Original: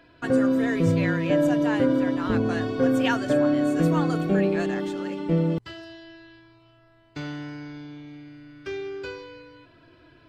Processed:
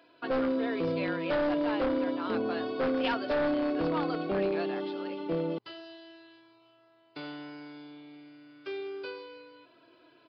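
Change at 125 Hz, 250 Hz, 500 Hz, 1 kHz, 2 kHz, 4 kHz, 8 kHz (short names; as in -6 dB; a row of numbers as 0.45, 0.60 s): -16.0 dB, -9.0 dB, -5.0 dB, -3.0 dB, -6.0 dB, -3.0 dB, n/a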